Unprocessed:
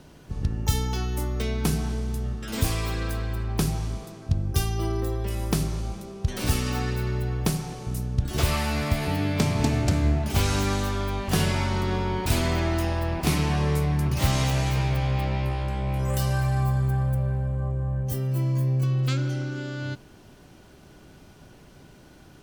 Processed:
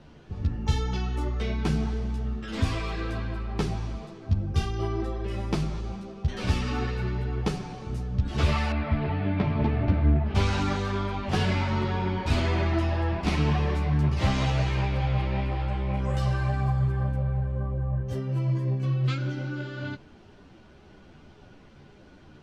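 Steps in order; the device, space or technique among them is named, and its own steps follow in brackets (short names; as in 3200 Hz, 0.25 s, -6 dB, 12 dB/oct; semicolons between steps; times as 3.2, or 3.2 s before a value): string-machine ensemble chorus (ensemble effect; LPF 4000 Hz 12 dB/oct); 8.72–10.35 air absorption 360 m; gain +2 dB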